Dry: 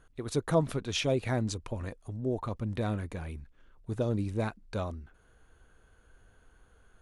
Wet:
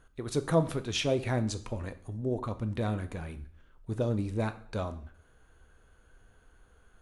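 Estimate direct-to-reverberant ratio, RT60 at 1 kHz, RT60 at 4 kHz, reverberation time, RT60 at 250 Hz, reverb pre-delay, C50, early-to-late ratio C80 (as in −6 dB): 10.0 dB, 0.55 s, 0.50 s, 0.60 s, 0.65 s, 8 ms, 15.0 dB, 18.0 dB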